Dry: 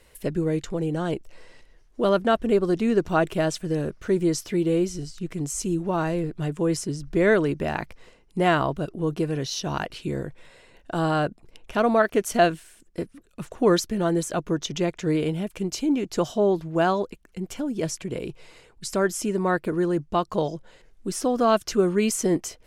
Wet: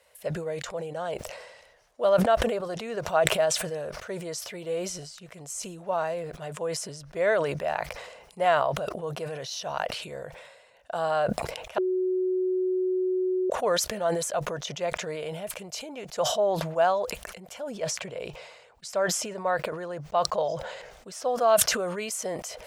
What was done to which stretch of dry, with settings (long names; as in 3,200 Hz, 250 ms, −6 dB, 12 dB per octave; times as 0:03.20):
0:11.78–0:13.50: beep over 370 Hz −6 dBFS
0:17.70–0:21.28: parametric band 11,000 Hz −9 dB 0.72 octaves
whole clip: high-pass filter 66 Hz; low shelf with overshoot 430 Hz −10 dB, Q 3; level that may fall only so fast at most 47 dB per second; level −5 dB